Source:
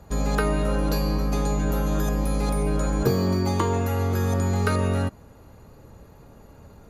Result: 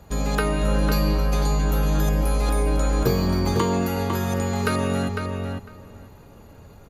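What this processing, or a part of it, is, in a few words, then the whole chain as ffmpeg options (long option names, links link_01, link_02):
presence and air boost: -filter_complex "[0:a]equalizer=frequency=3000:width_type=o:width=1.1:gain=4.5,highshelf=frequency=11000:gain=5.5,asplit=2[link_01][link_02];[link_02]adelay=502,lowpass=frequency=3600:poles=1,volume=-5dB,asplit=2[link_03][link_04];[link_04]adelay=502,lowpass=frequency=3600:poles=1,volume=0.15,asplit=2[link_05][link_06];[link_06]adelay=502,lowpass=frequency=3600:poles=1,volume=0.15[link_07];[link_01][link_03][link_05][link_07]amix=inputs=4:normalize=0"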